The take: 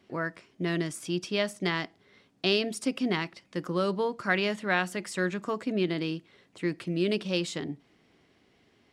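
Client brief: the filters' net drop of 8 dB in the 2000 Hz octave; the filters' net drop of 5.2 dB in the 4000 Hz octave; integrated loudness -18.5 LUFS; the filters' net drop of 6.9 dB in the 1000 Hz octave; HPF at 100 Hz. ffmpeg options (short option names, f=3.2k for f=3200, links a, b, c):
-af "highpass=100,equalizer=f=1k:t=o:g=-7.5,equalizer=f=2k:t=o:g=-7,equalizer=f=4k:t=o:g=-3.5,volume=14dB"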